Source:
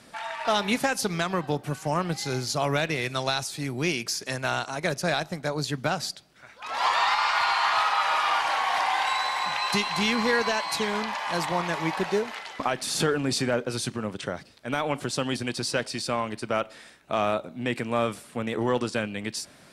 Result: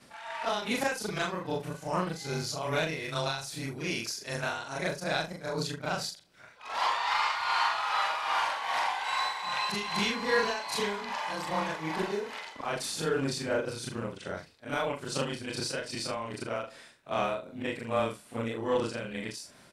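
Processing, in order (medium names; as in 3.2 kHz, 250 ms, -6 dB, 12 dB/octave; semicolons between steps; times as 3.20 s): short-time spectra conjugated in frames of 88 ms; doubling 42 ms -9 dB; tremolo 2.5 Hz, depth 53%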